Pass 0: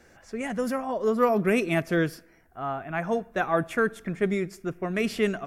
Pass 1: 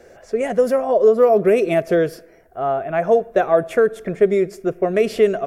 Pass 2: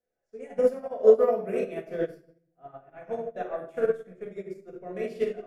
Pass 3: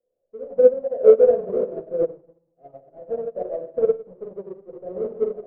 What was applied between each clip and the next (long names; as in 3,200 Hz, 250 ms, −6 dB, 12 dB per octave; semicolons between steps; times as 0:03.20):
downward compressor 3 to 1, threshold −24 dBFS, peak gain reduction 6 dB; flat-topped bell 510 Hz +11.5 dB 1.1 octaves; level +4 dB
rectangular room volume 440 cubic metres, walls mixed, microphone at 1.9 metres; expander for the loud parts 2.5 to 1, over −26 dBFS; level −8.5 dB
each half-wave held at its own peak; low-pass with resonance 540 Hz, resonance Q 4.9; level −6 dB